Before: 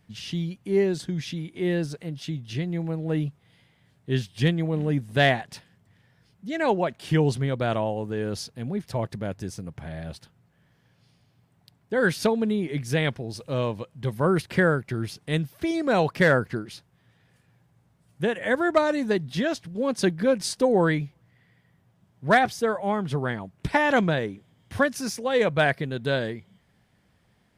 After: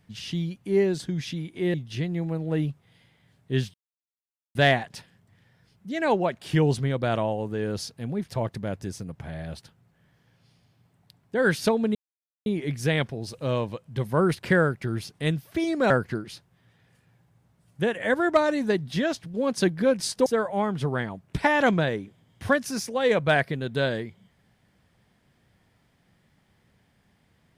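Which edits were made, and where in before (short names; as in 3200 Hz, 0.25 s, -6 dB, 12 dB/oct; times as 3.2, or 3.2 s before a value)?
1.74–2.32 cut
4.32–5.13 mute
12.53 insert silence 0.51 s
15.97–16.31 cut
20.67–22.56 cut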